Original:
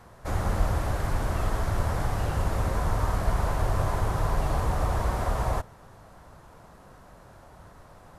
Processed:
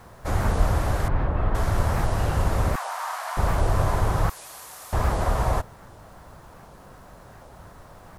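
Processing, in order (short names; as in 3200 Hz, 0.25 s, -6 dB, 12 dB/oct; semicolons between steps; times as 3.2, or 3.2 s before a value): 2.76–3.37 steep high-pass 730 Hz 36 dB/oct; 4.3–4.93 differentiator; bit-crush 11-bit; 1.08–1.55 air absorption 470 m; record warp 78 rpm, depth 250 cents; gain +4 dB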